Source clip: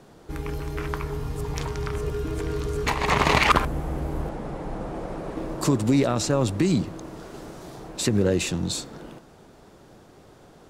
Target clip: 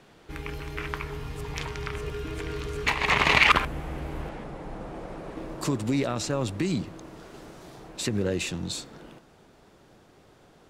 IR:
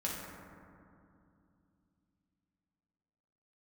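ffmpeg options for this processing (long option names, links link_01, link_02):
-af "asetnsamples=nb_out_samples=441:pad=0,asendcmd='4.44 equalizer g 4.5',equalizer=frequency=2500:width=0.81:gain=10.5,volume=-6dB"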